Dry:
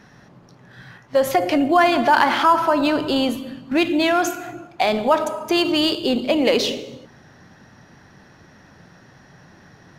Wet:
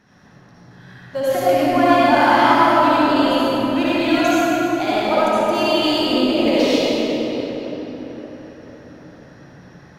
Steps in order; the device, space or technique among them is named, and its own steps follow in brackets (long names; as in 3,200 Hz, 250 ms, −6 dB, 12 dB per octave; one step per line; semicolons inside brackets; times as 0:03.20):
cathedral (convolution reverb RT60 4.5 s, pre-delay 54 ms, DRR −10.5 dB)
level −8.5 dB